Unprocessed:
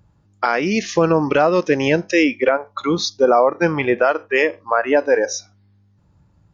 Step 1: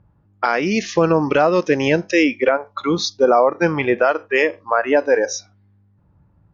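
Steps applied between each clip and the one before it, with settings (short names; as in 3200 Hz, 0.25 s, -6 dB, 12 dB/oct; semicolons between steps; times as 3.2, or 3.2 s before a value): low-pass opened by the level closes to 1800 Hz, open at -14.5 dBFS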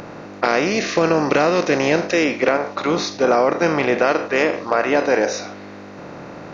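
per-bin compression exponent 0.4; gain -6 dB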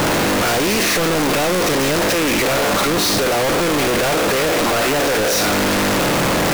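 infinite clipping; gain +2.5 dB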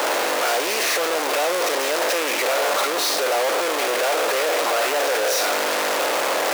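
ladder high-pass 400 Hz, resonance 25%; gain +2 dB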